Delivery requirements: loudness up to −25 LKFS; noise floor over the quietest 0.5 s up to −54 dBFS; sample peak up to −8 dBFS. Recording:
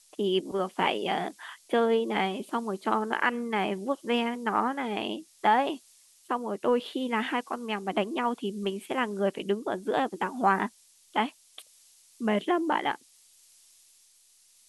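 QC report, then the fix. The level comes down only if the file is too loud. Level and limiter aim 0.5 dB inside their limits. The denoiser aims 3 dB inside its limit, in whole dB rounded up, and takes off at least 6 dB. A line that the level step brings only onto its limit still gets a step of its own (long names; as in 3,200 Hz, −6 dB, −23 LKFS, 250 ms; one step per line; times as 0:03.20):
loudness −29.0 LKFS: in spec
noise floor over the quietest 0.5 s −61 dBFS: in spec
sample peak −10.5 dBFS: in spec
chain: no processing needed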